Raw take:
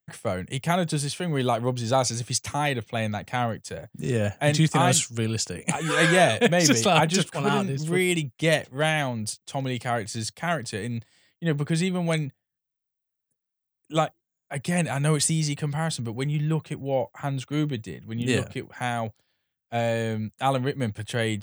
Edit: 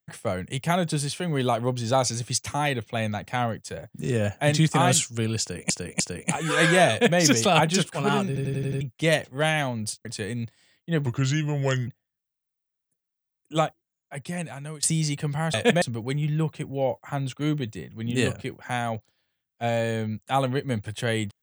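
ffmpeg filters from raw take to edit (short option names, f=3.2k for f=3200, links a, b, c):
-filter_complex "[0:a]asplit=15[a][b][c][d][e][f][g][h][i][j][k][l][m][n][o];[a]atrim=end=5.702[p];[b]atrim=start=5.398:end=5.702[q];[c]atrim=start=5.398:end=7.762[r];[d]atrim=start=7.668:end=7.762[s];[e]atrim=start=7.668:end=7.762[t];[f]atrim=start=7.668:end=7.762[u];[g]atrim=start=7.668:end=7.762[v];[h]atrim=start=7.668:end=7.762[w];[i]atrim=start=8.208:end=9.452[x];[j]atrim=start=10.588:end=11.604[y];[k]atrim=start=11.6:end=12.27,asetpts=PTS-STARTPTS,asetrate=36162,aresample=44100[z];[l]atrim=start=12.266:end=15.22,asetpts=PTS-STARTPTS,afade=t=out:st=1.744:d=1.21:silence=0.1[aa];[m]atrim=start=15.22:end=15.932,asetpts=PTS-STARTPTS,afade=t=in:d=0.004:c=hsin:silence=0.1[ab];[n]atrim=start=6.298:end=6.582[ac];[o]atrim=start=15.928[ad];[p][q]acrossfade=d=0.004:c1=hsin:c2=hsin[ae];[ae][r]acrossfade=d=0.004:c1=hsin:c2=hsin[af];[af][s]acrossfade=d=0.004:c1=hsin:c2=hsin[ag];[ag][t]acrossfade=d=0.004:c1=hsin:c2=hsin[ah];[ah][u]acrossfade=d=0.004:c1=hsin:c2=hsin[ai];[ai][v]acrossfade=d=0.004:c1=hsin:c2=hsin[aj];[aj][w]acrossfade=d=0.004:c1=hsin:c2=hsin[ak];[ak][x]acrossfade=d=0.004:c1=hsin:c2=hsin[al];[al][y]acrossfade=d=0.004:c1=hsin:c2=hsin[am];[am][z]acrossfade=d=0.004:c1=hsin:c2=hsin[an];[aa][ab]concat=n=2:v=0:a=1[ao];[an][ao]acrossfade=d=0.004:c1=hsin:c2=hsin[ap];[ap][ac]acrossfade=d=0.004:c1=hsin:c2=hsin[aq];[aq][ad]acrossfade=d=0.004:c1=hsin:c2=hsin"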